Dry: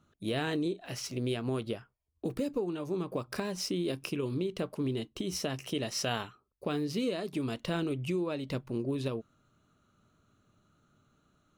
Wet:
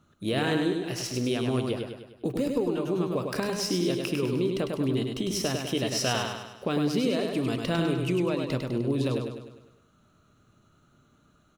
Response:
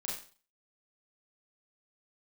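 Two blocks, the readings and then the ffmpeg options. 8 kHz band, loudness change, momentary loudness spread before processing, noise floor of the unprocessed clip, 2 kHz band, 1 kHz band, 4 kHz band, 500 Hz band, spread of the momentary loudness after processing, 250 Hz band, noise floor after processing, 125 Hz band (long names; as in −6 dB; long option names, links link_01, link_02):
+6.0 dB, +6.0 dB, 5 LU, −74 dBFS, +6.0 dB, +6.0 dB, +6.0 dB, +6.0 dB, 5 LU, +6.5 dB, −63 dBFS, +6.5 dB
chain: -af "aecho=1:1:101|202|303|404|505|606|707:0.596|0.304|0.155|0.079|0.0403|0.0206|0.0105,volume=4.5dB"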